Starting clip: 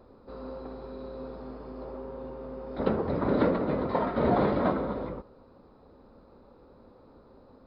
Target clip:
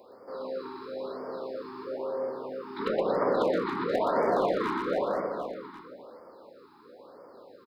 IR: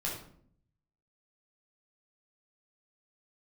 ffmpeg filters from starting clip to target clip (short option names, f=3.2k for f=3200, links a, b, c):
-filter_complex "[0:a]highpass=390,asoftclip=type=hard:threshold=-20dB,highshelf=f=4.2k:g=9.5,aecho=1:1:120|276|478.8|742.4|1085:0.631|0.398|0.251|0.158|0.1,asplit=2[a][b];[1:a]atrim=start_sample=2205,lowpass=2.6k[c];[b][c]afir=irnorm=-1:irlink=0,volume=-8.5dB[d];[a][d]amix=inputs=2:normalize=0,acompressor=threshold=-25dB:ratio=6,afftfilt=real='re*(1-between(b*sr/1024,550*pow(3300/550,0.5+0.5*sin(2*PI*1*pts/sr))/1.41,550*pow(3300/550,0.5+0.5*sin(2*PI*1*pts/sr))*1.41))':imag='im*(1-between(b*sr/1024,550*pow(3300/550,0.5+0.5*sin(2*PI*1*pts/sr))/1.41,550*pow(3300/550,0.5+0.5*sin(2*PI*1*pts/sr))*1.41))':win_size=1024:overlap=0.75,volume=3dB"